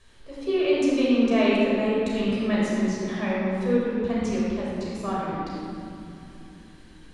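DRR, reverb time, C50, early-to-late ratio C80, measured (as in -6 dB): -6.5 dB, 3.0 s, -3.0 dB, -1.0 dB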